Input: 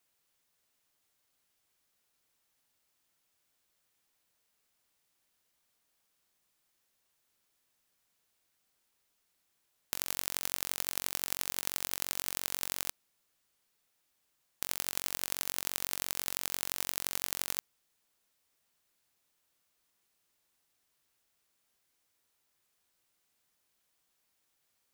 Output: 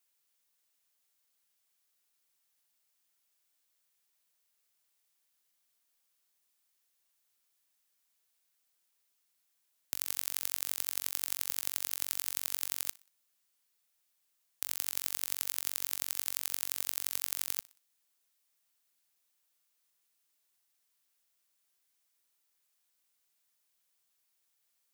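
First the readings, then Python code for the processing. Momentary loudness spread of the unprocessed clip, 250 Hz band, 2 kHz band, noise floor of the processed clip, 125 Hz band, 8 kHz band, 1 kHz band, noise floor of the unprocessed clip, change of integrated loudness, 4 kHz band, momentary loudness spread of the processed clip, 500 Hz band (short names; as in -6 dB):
3 LU, -10.5 dB, -4.5 dB, -78 dBFS, under -10 dB, -0.5 dB, -6.5 dB, -78 dBFS, +0.5 dB, -2.5 dB, 3 LU, -8.5 dB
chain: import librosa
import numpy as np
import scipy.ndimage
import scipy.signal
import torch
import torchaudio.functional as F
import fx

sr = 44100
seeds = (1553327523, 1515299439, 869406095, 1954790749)

p1 = scipy.signal.sosfilt(scipy.signal.butter(2, 68.0, 'highpass', fs=sr, output='sos'), x)
p2 = fx.tilt_eq(p1, sr, slope=2.0)
p3 = p2 + fx.echo_feedback(p2, sr, ms=61, feedback_pct=44, wet_db=-23.5, dry=0)
y = p3 * 10.0 ** (-6.5 / 20.0)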